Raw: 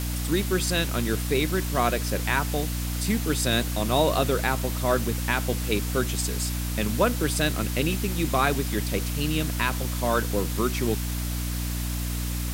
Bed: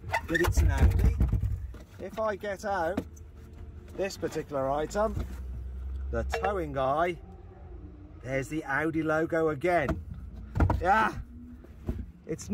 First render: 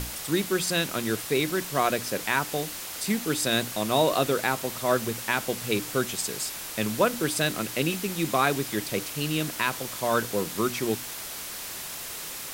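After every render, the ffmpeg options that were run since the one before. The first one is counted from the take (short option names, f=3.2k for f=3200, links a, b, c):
-af "bandreject=f=60:t=h:w=6,bandreject=f=120:t=h:w=6,bandreject=f=180:t=h:w=6,bandreject=f=240:t=h:w=6,bandreject=f=300:t=h:w=6"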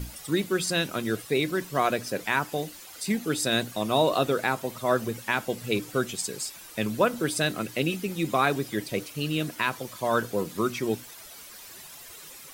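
-af "afftdn=nr=12:nf=-37"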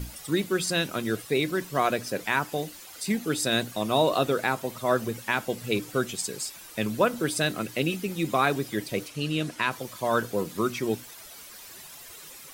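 -filter_complex "[0:a]asettb=1/sr,asplit=3[a][b][c];[a]atrim=end=9.084[d];[b]atrim=start=9.08:end=9.71,asetpts=PTS-STARTPTS,afade=t=in:d=0.004:c=qsin,afade=t=out:st=0.626:d=0.004:c=qsin,lowpass=10k[e];[c]atrim=start=9.706[f];[d][e]acrossfade=d=0.004:c1=hsin:c2=qsin[g];[g][f]acrossfade=d=0.004:c1=qsin:c2=hsin"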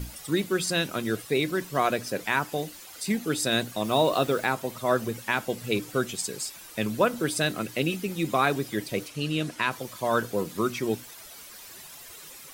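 -filter_complex "[0:a]asettb=1/sr,asplit=3[a][b][c];[a]atrim=end=3.844[d];[b]atrim=start=3.84:end=4.45,asetpts=PTS-STARTPTS,afade=t=in:d=0.004:c=qsin,afade=t=out:st=0.606:d=0.004:c=qsin,acrusher=bits=8:dc=4:mix=0:aa=0.000001[e];[c]atrim=start=4.446[f];[d][e]acrossfade=d=0.004:c1=hsin:c2=qsin[g];[g][f]acrossfade=d=0.004:c1=qsin:c2=hsin"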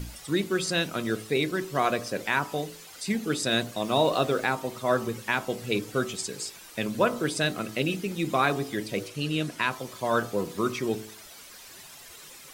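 -filter_complex "[0:a]bandreject=f=54.14:t=h:w=4,bandreject=f=108.28:t=h:w=4,bandreject=f=162.42:t=h:w=4,bandreject=f=216.56:t=h:w=4,bandreject=f=270.7:t=h:w=4,bandreject=f=324.84:t=h:w=4,bandreject=f=378.98:t=h:w=4,bandreject=f=433.12:t=h:w=4,bandreject=f=487.26:t=h:w=4,bandreject=f=541.4:t=h:w=4,bandreject=f=595.54:t=h:w=4,bandreject=f=649.68:t=h:w=4,bandreject=f=703.82:t=h:w=4,bandreject=f=757.96:t=h:w=4,bandreject=f=812.1:t=h:w=4,bandreject=f=866.24:t=h:w=4,bandreject=f=920.38:t=h:w=4,bandreject=f=974.52:t=h:w=4,bandreject=f=1.02866k:t=h:w=4,bandreject=f=1.0828k:t=h:w=4,bandreject=f=1.13694k:t=h:w=4,bandreject=f=1.19108k:t=h:w=4,bandreject=f=1.24522k:t=h:w=4,bandreject=f=1.29936k:t=h:w=4,acrossover=split=9000[a][b];[b]acompressor=threshold=-51dB:ratio=4:attack=1:release=60[c];[a][c]amix=inputs=2:normalize=0"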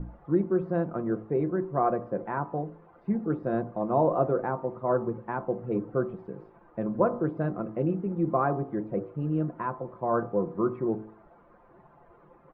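-af "lowpass=f=1.1k:w=0.5412,lowpass=f=1.1k:w=1.3066,aecho=1:1:5.8:0.39"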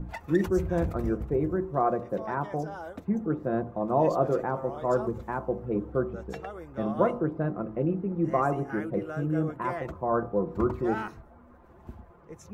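-filter_complex "[1:a]volume=-10.5dB[a];[0:a][a]amix=inputs=2:normalize=0"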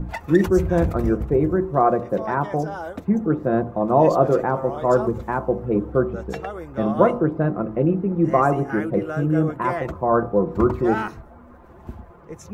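-af "volume=8dB"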